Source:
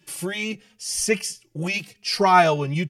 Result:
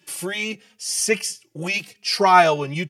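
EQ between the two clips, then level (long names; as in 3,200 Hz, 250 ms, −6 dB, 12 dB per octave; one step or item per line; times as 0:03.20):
high-pass filter 280 Hz 6 dB per octave
+2.5 dB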